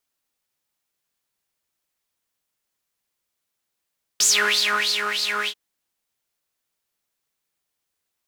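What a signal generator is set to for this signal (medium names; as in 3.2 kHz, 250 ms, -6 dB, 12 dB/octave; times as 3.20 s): synth patch with filter wobble G#4, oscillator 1 triangle, sub -6 dB, noise -1 dB, filter bandpass, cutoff 1.6 kHz, Q 7.5, filter envelope 1.5 oct, attack 4.7 ms, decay 0.84 s, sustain -6.5 dB, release 0.07 s, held 1.27 s, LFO 3.2 Hz, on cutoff 0.9 oct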